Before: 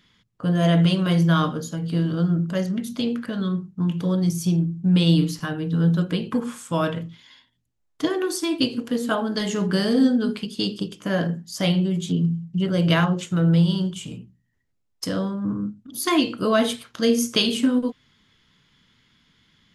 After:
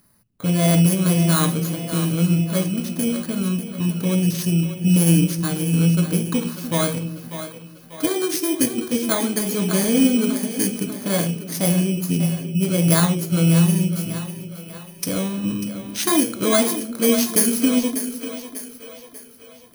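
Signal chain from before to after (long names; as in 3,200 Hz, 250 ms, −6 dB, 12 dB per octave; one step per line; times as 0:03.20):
samples in bit-reversed order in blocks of 16 samples
echo with a time of its own for lows and highs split 400 Hz, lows 298 ms, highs 593 ms, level −10 dB
dynamic equaliser 7,600 Hz, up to +6 dB, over −45 dBFS, Q 0.93
level +1.5 dB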